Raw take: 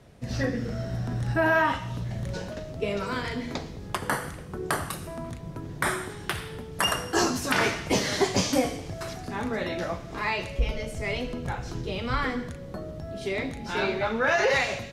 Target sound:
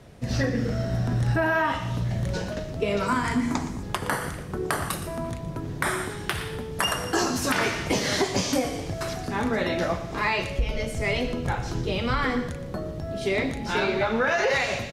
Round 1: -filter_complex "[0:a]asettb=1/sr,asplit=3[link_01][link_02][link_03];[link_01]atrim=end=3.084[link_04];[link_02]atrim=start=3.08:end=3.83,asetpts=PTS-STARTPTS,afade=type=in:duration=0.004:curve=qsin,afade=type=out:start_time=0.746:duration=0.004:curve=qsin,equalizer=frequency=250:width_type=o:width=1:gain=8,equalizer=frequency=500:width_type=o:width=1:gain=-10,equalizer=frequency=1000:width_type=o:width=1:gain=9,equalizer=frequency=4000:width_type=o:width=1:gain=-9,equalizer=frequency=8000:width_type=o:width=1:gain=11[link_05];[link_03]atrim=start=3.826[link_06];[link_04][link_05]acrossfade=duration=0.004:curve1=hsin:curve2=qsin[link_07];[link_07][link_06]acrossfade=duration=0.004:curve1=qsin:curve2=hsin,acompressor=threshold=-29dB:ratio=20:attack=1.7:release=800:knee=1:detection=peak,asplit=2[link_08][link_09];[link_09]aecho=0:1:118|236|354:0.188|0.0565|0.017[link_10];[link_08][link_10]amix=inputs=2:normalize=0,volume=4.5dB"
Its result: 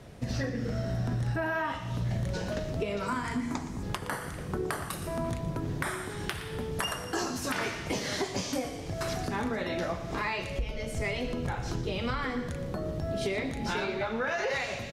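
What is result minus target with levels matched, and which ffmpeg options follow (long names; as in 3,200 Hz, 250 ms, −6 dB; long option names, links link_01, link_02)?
downward compressor: peak gain reduction +7.5 dB
-filter_complex "[0:a]asettb=1/sr,asplit=3[link_01][link_02][link_03];[link_01]atrim=end=3.084[link_04];[link_02]atrim=start=3.08:end=3.83,asetpts=PTS-STARTPTS,afade=type=in:duration=0.004:curve=qsin,afade=type=out:start_time=0.746:duration=0.004:curve=qsin,equalizer=frequency=250:width_type=o:width=1:gain=8,equalizer=frequency=500:width_type=o:width=1:gain=-10,equalizer=frequency=1000:width_type=o:width=1:gain=9,equalizer=frequency=4000:width_type=o:width=1:gain=-9,equalizer=frequency=8000:width_type=o:width=1:gain=11[link_05];[link_03]atrim=start=3.826[link_06];[link_04][link_05]acrossfade=duration=0.004:curve1=hsin:curve2=qsin[link_07];[link_07][link_06]acrossfade=duration=0.004:curve1=qsin:curve2=hsin,acompressor=threshold=-21dB:ratio=20:attack=1.7:release=800:knee=1:detection=peak,asplit=2[link_08][link_09];[link_09]aecho=0:1:118|236|354:0.188|0.0565|0.017[link_10];[link_08][link_10]amix=inputs=2:normalize=0,volume=4.5dB"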